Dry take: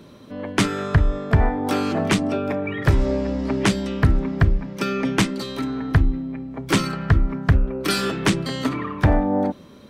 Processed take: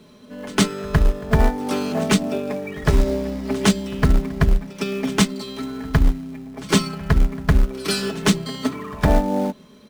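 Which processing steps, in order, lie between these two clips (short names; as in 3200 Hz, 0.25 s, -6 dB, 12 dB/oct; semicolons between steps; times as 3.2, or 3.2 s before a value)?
LPF 10000 Hz; high shelf 4000 Hz +5 dB; comb 4.7 ms, depth 60%; dynamic EQ 2100 Hz, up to -4 dB, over -34 dBFS, Q 1.1; in parallel at -6.5 dB: companded quantiser 4-bit; on the sum: reverse echo 0.109 s -16 dB; upward expander 1.5:1, over -21 dBFS; gain -2 dB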